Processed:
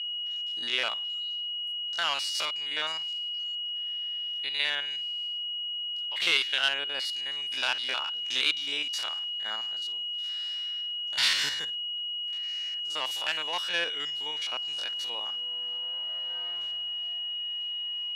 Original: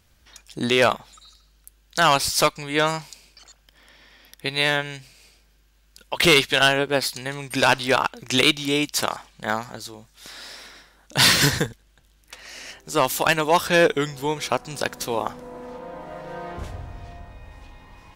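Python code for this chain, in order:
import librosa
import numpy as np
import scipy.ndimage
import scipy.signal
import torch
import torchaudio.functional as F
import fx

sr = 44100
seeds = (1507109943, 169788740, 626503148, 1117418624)

y = fx.spec_steps(x, sr, hold_ms=50)
y = y + 10.0 ** (-26.0 / 20.0) * np.sin(2.0 * np.pi * 2900.0 * np.arange(len(y)) / sr)
y = fx.bandpass_q(y, sr, hz=3100.0, q=0.9)
y = y * 10.0 ** (-5.0 / 20.0)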